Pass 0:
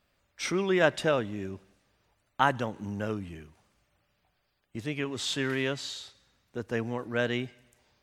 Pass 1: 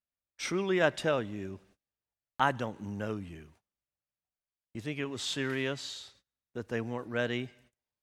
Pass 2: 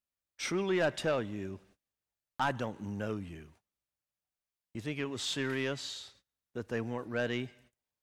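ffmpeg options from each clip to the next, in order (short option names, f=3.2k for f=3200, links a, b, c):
-af "agate=range=-25dB:threshold=-58dB:ratio=16:detection=peak,volume=-3dB"
-af "asoftclip=type=tanh:threshold=-22dB"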